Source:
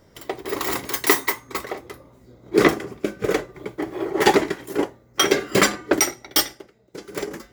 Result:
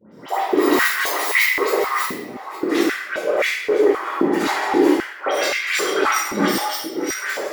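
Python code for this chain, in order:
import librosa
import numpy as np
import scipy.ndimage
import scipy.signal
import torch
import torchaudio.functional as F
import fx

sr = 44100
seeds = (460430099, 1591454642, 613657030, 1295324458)

y = fx.reverse_delay(x, sr, ms=500, wet_db=-12)
y = fx.dispersion(y, sr, late='highs', ms=124.0, hz=1800.0)
y = fx.over_compress(y, sr, threshold_db=-24.0, ratio=-1.0)
y = fx.room_shoebox(y, sr, seeds[0], volume_m3=510.0, walls='mixed', distance_m=4.7)
y = fx.filter_held_highpass(y, sr, hz=3.8, low_hz=220.0, high_hz=2200.0)
y = F.gain(torch.from_numpy(y), -8.0).numpy()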